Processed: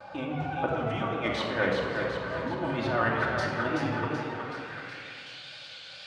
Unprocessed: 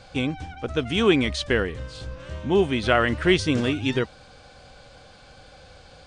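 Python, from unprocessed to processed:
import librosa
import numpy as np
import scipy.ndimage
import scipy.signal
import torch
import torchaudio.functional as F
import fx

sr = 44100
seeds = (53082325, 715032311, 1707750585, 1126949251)

y = fx.tracing_dist(x, sr, depth_ms=0.027)
y = fx.peak_eq(y, sr, hz=140.0, db=11.5, octaves=0.9)
y = fx.over_compress(y, sr, threshold_db=-22.0, ratio=-0.5)
y = fx.echo_thinned(y, sr, ms=376, feedback_pct=53, hz=270.0, wet_db=-4.5)
y = fx.wow_flutter(y, sr, seeds[0], rate_hz=2.1, depth_cents=87.0)
y = fx.filter_sweep_bandpass(y, sr, from_hz=920.0, to_hz=3300.0, start_s=4.33, end_s=5.36, q=1.9)
y = fx.room_shoebox(y, sr, seeds[1], volume_m3=2200.0, walls='mixed', distance_m=2.6)
y = y * librosa.db_to_amplitude(3.5)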